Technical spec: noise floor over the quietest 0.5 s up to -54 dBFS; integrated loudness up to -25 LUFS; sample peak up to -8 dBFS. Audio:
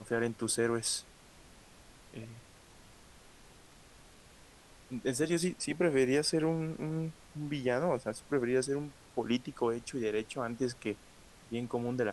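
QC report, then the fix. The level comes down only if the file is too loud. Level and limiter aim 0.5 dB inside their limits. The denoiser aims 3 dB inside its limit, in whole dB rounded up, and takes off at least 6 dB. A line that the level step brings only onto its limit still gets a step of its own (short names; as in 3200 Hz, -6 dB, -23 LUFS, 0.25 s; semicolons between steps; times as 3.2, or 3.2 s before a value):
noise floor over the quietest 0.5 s -57 dBFS: OK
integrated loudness -33.5 LUFS: OK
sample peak -17.5 dBFS: OK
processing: none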